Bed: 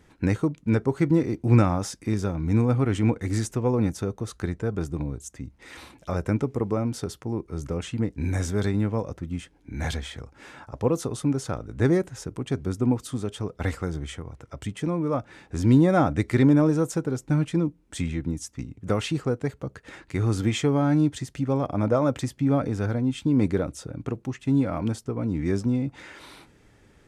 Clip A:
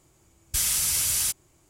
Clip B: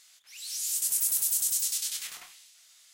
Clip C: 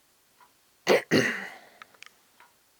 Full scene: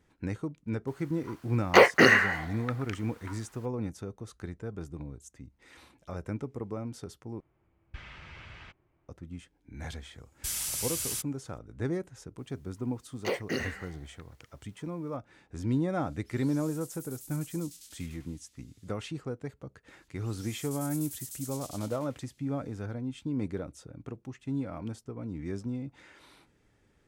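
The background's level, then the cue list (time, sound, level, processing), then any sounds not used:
bed −11 dB
0:00.87: mix in C −1 dB + parametric band 1,200 Hz +12 dB 2 octaves
0:07.40: overwrite with A −8.5 dB + low-pass filter 2,400 Hz 24 dB per octave
0:09.90: mix in A −9 dB
0:12.38: mix in C −10 dB
0:15.99: mix in B −11.5 dB + downward compressor 1.5 to 1, threshold −51 dBFS
0:19.89: mix in B −15.5 dB

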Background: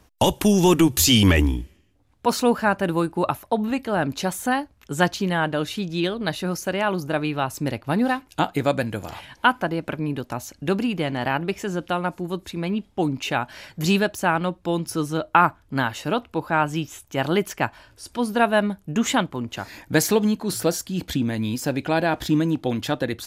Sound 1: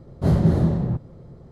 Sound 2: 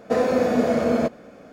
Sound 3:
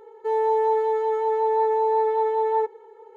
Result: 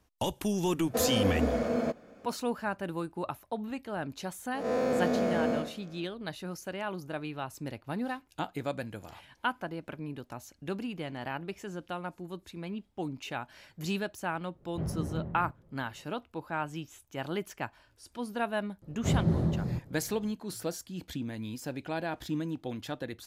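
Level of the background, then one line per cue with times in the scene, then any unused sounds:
background −13 dB
0:00.84: mix in 2 −9 dB
0:04.54: mix in 2 −6.5 dB + spectrum smeared in time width 154 ms
0:14.54: mix in 1 −17 dB + Butterworth low-pass 2,900 Hz
0:18.82: mix in 1 −9 dB
not used: 3

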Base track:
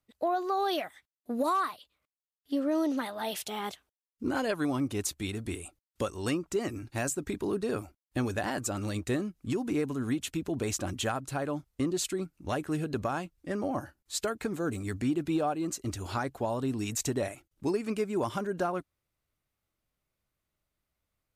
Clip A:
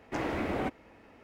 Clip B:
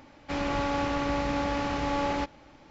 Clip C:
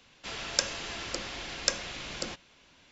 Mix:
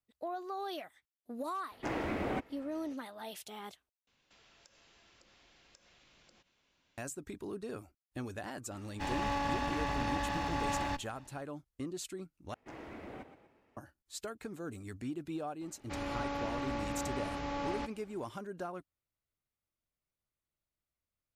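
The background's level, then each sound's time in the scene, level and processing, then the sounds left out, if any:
base track −10.5 dB
0:01.71: mix in A −3 dB
0:04.07: overwrite with C −15 dB + downward compressor 4 to 1, threshold −48 dBFS
0:08.71: mix in B −4.5 dB + lower of the sound and its delayed copy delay 1.1 ms
0:12.54: overwrite with A −15.5 dB + echo with shifted repeats 120 ms, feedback 45%, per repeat +32 Hz, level −11 dB
0:15.61: mix in B −9 dB

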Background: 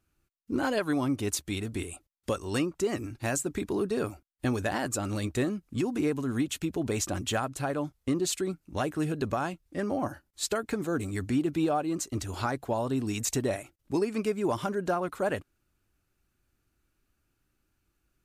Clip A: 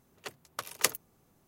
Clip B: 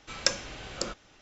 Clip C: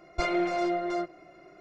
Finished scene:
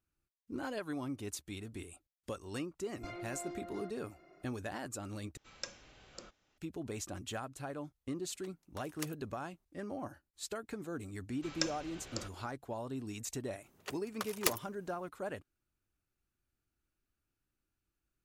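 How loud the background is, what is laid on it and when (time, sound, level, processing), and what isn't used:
background −11.5 dB
0:02.85: mix in C −9 dB + downward compressor 2 to 1, threshold −40 dBFS
0:05.37: overwrite with B −17.5 dB
0:08.18: mix in A −16.5 dB
0:11.35: mix in B −9.5 dB
0:13.62: mix in A −2 dB + phase distortion by the signal itself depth 0.13 ms

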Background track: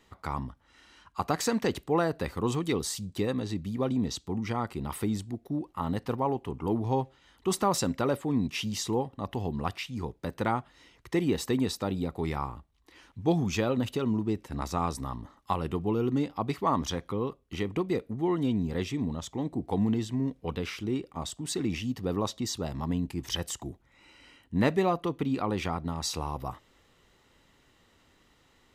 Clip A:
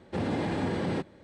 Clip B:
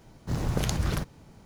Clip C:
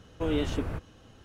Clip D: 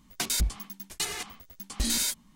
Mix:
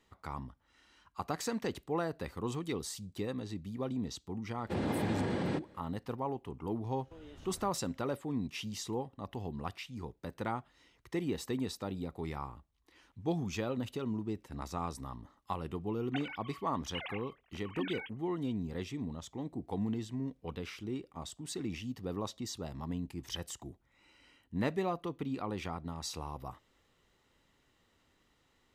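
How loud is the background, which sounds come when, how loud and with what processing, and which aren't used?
background track −8 dB
0:04.57: mix in A −4 dB
0:06.91: mix in C −15 dB + downward compressor 5 to 1, threshold −33 dBFS
0:15.95: mix in D −14.5 dB + three sine waves on the formant tracks
not used: B

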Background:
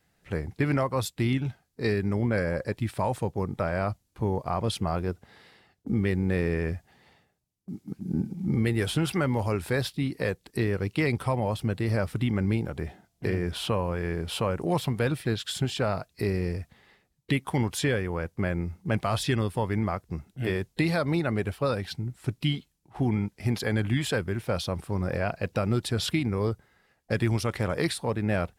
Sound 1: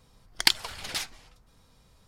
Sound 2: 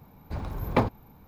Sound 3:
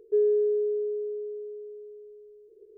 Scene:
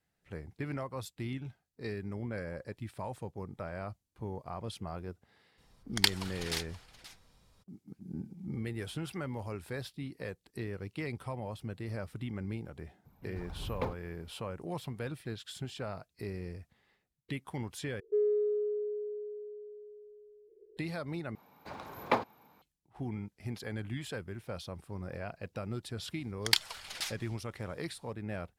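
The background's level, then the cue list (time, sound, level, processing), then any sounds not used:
background −12.5 dB
0:05.57: mix in 1 −5 dB, fades 0.02 s + single-tap delay 527 ms −15.5 dB
0:13.05: mix in 2 −13 dB + phase shifter 1.7 Hz
0:18.00: overwrite with 3 −6 dB + adaptive Wiener filter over 9 samples
0:21.35: overwrite with 2 −2 dB + meter weighting curve A
0:26.06: mix in 1 −5 dB + low-shelf EQ 490 Hz −9.5 dB

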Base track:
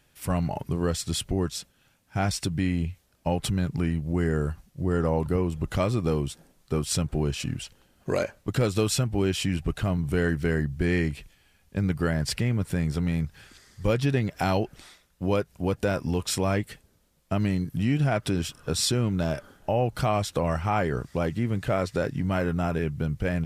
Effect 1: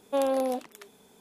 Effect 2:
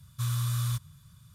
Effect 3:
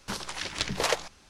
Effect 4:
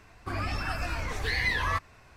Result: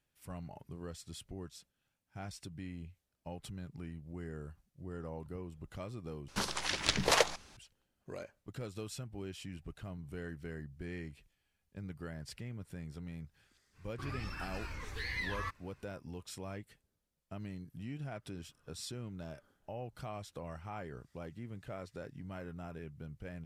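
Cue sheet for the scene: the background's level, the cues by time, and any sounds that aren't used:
base track −19 dB
0:06.28: overwrite with 3 −0.5 dB
0:13.72: mix in 4 −10.5 dB, fades 0.05 s + parametric band 690 Hz −13.5 dB 0.35 octaves
not used: 1, 2

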